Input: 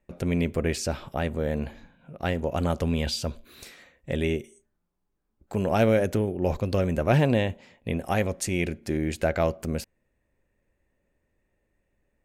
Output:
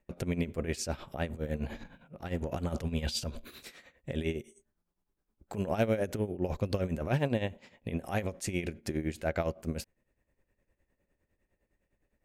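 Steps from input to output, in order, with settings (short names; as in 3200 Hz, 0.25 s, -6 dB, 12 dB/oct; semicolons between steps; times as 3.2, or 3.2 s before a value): compressor 1.5:1, threshold -31 dBFS, peak gain reduction 5.5 dB; 1.3–3.64 transient shaper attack -11 dB, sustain +8 dB; tremolo 9.8 Hz, depth 74%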